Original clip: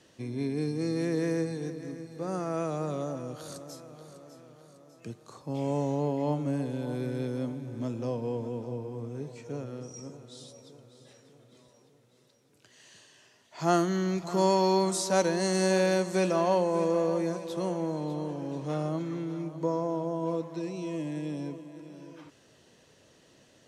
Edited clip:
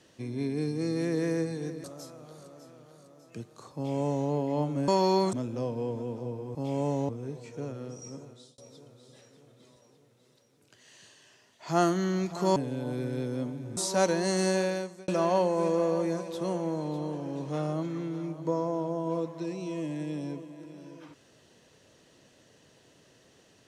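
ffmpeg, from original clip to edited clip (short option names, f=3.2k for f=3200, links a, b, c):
-filter_complex "[0:a]asplit=10[a][b][c][d][e][f][g][h][i][j];[a]atrim=end=1.842[k];[b]atrim=start=3.538:end=6.582[l];[c]atrim=start=14.478:end=14.932[m];[d]atrim=start=7.788:end=9.012[n];[e]atrim=start=5.448:end=5.992[o];[f]atrim=start=9.008:end=10.5,asetpts=PTS-STARTPTS,afade=t=out:st=1.202:d=0.29[p];[g]atrim=start=10.5:end=14.482,asetpts=PTS-STARTPTS,afade=t=in:d=0.004:c=hsin[q];[h]atrim=start=6.578:end=7.792[r];[i]atrim=start=14.928:end=16.24,asetpts=PTS-STARTPTS,afade=t=out:st=0.652:d=0.66[s];[j]atrim=start=16.24,asetpts=PTS-STARTPTS,afade=t=in:d=0.004:c=hsin[t];[k][l]acrossfade=d=0.004:c1=hsin:c2=hsin[u];[u][m]acrossfade=d=0.004:c1=hsin:c2=hsin[v];[v][n]acrossfade=d=0.004:c1=hsin:c2=hsin[w];[w][o]acrossfade=d=0.004:c1=hsin:c2=hsin[x];[p][q]concat=n=2:v=0:a=1[y];[x][y]acrossfade=d=0.004:c1=hsin:c2=hsin[z];[z][r]acrossfade=d=0.004:c1=hsin:c2=hsin[aa];[s][t]concat=n=2:v=0:a=1[ab];[aa][ab]acrossfade=d=0.004:c1=hsin:c2=hsin"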